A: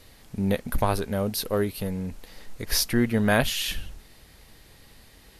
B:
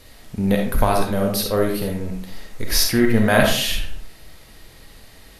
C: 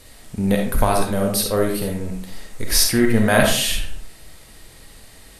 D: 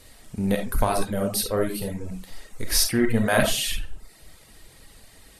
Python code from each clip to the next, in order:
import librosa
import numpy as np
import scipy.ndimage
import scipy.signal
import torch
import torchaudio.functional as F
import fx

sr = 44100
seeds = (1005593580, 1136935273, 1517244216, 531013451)

y1 = fx.rev_freeverb(x, sr, rt60_s=0.55, hf_ratio=0.6, predelay_ms=10, drr_db=1.0)
y1 = F.gain(torch.from_numpy(y1), 4.0).numpy()
y2 = fx.peak_eq(y1, sr, hz=8500.0, db=8.5, octaves=0.52)
y3 = fx.dereverb_blind(y2, sr, rt60_s=0.58)
y3 = F.gain(torch.from_numpy(y3), -4.0).numpy()